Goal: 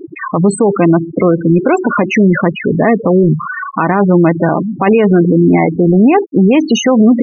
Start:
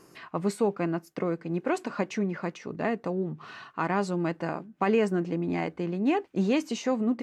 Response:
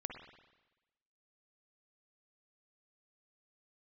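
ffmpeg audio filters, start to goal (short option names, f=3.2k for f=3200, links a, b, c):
-filter_complex "[0:a]aeval=exprs='val(0)+0.5*0.0126*sgn(val(0))':c=same,aeval=exprs='val(0)+0.000891*(sin(2*PI*50*n/s)+sin(2*PI*2*50*n/s)/2+sin(2*PI*3*50*n/s)/3+sin(2*PI*4*50*n/s)/4+sin(2*PI*5*50*n/s)/5)':c=same,asplit=2[a][b];[1:a]atrim=start_sample=2205,afade=t=out:st=0.39:d=0.01,atrim=end_sample=17640[c];[b][c]afir=irnorm=-1:irlink=0,volume=-16.5dB[d];[a][d]amix=inputs=2:normalize=0,afftfilt=real='re*gte(hypot(re,im),0.0501)':imag='im*gte(hypot(re,im),0.0501)':win_size=1024:overlap=0.75,alimiter=level_in=23dB:limit=-1dB:release=50:level=0:latency=1,volume=-1dB"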